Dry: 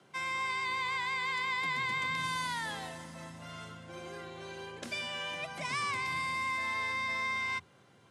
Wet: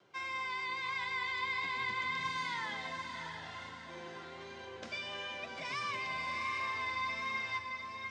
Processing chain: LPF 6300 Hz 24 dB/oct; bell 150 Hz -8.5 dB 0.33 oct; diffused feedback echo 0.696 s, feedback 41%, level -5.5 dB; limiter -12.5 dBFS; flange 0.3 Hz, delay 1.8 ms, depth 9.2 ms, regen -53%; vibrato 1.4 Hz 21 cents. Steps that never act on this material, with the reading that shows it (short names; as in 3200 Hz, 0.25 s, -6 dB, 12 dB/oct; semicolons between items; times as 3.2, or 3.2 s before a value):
limiter -12.5 dBFS: input peak -20.5 dBFS